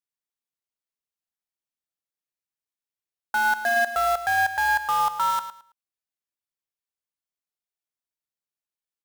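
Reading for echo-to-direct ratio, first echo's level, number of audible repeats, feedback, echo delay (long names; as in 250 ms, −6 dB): −12.0 dB, −12.0 dB, 2, 22%, 109 ms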